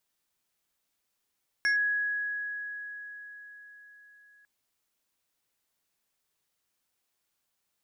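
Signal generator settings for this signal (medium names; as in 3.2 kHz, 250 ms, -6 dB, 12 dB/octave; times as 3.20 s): FM tone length 2.80 s, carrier 1.67 kHz, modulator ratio 2.29, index 0.59, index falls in 0.12 s linear, decay 4.74 s, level -22 dB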